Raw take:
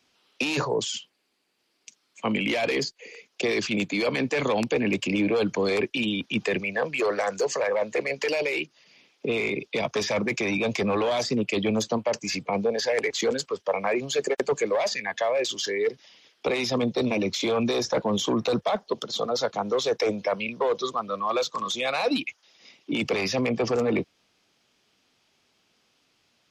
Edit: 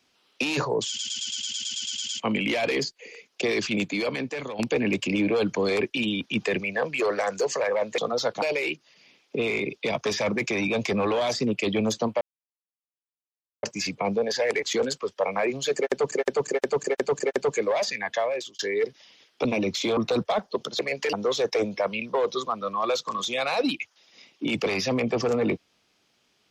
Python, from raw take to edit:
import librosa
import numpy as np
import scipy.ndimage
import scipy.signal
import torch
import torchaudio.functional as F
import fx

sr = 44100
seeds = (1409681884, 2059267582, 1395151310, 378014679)

y = fx.edit(x, sr, fx.stutter_over(start_s=0.88, slice_s=0.11, count=12),
    fx.fade_out_to(start_s=3.84, length_s=0.75, floor_db=-13.5),
    fx.swap(start_s=7.98, length_s=0.34, other_s=19.16, other_length_s=0.44),
    fx.insert_silence(at_s=12.11, length_s=1.42),
    fx.repeat(start_s=14.23, length_s=0.36, count=5),
    fx.fade_out_span(start_s=15.24, length_s=0.39),
    fx.cut(start_s=16.49, length_s=0.55),
    fx.cut(start_s=17.56, length_s=0.78), tone=tone)